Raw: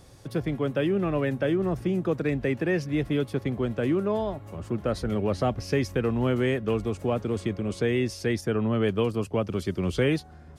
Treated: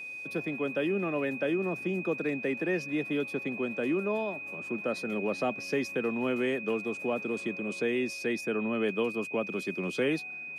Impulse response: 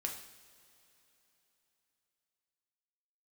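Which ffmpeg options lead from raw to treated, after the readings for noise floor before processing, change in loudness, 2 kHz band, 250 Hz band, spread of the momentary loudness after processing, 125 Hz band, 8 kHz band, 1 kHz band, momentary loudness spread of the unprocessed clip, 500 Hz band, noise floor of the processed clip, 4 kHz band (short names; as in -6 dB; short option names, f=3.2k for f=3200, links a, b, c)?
-47 dBFS, -4.0 dB, +2.5 dB, -5.0 dB, 4 LU, -14.0 dB, -4.0 dB, -4.0 dB, 4 LU, -4.0 dB, -41 dBFS, -4.0 dB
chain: -af "highpass=f=190:w=0.5412,highpass=f=190:w=1.3066,aeval=exprs='val(0)+0.02*sin(2*PI*2500*n/s)':c=same,volume=-4dB"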